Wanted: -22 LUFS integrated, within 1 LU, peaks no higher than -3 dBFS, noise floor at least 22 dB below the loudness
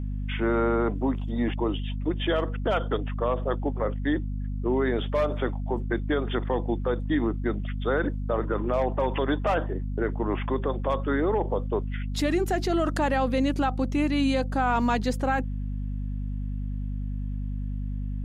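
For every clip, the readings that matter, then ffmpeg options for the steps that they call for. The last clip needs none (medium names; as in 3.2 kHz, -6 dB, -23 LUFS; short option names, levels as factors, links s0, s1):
hum 50 Hz; highest harmonic 250 Hz; hum level -28 dBFS; loudness -27.5 LUFS; peak level -13.5 dBFS; loudness target -22.0 LUFS
-> -af "bandreject=f=50:t=h:w=6,bandreject=f=100:t=h:w=6,bandreject=f=150:t=h:w=6,bandreject=f=200:t=h:w=6,bandreject=f=250:t=h:w=6"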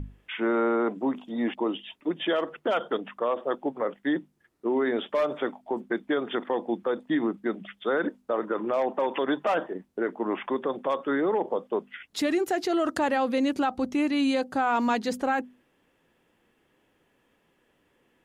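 hum not found; loudness -28.0 LUFS; peak level -15.5 dBFS; loudness target -22.0 LUFS
-> -af "volume=2"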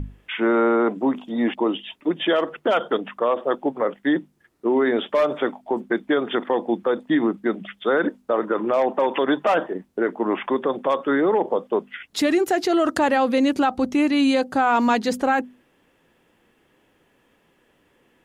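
loudness -22.0 LUFS; peak level -9.5 dBFS; noise floor -63 dBFS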